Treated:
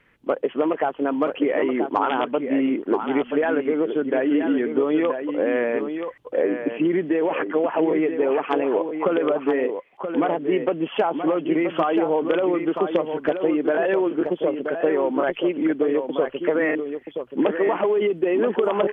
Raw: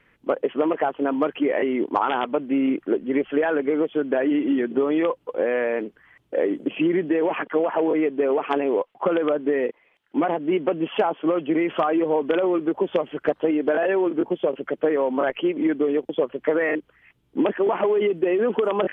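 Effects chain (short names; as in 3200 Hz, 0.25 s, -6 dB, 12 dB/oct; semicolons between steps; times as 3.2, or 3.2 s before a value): 6.42–6.85 LPF 2000 Hz; on a send: echo 0.978 s -7.5 dB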